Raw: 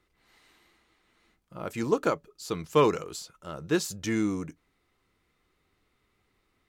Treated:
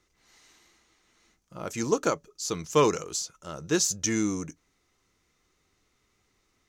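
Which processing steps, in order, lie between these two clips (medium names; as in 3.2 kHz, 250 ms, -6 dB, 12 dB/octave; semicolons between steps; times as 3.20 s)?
peaking EQ 6.2 kHz +14.5 dB 0.61 oct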